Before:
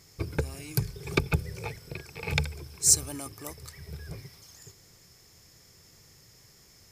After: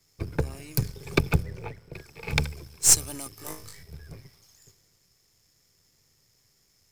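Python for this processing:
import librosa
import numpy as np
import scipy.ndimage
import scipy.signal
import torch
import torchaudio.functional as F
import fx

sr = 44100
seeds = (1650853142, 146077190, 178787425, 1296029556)

p1 = np.where(x < 0.0, 10.0 ** (-7.0 / 20.0) * x, x)
p2 = fx.high_shelf(p1, sr, hz=4100.0, db=-11.0, at=(1.43, 1.93))
p3 = fx.room_flutter(p2, sr, wall_m=3.3, rt60_s=0.39, at=(3.35, 3.83))
p4 = fx.quant_float(p3, sr, bits=2)
p5 = p3 + (p4 * 10.0 ** (-8.0 / 20.0))
p6 = fx.band_widen(p5, sr, depth_pct=40)
y = p6 * 10.0 ** (-1.0 / 20.0)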